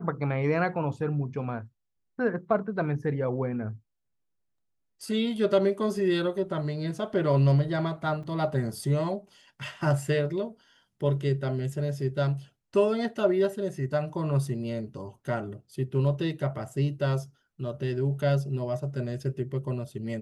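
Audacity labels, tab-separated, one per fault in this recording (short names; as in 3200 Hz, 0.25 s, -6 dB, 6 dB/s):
8.230000	8.230000	gap 4.4 ms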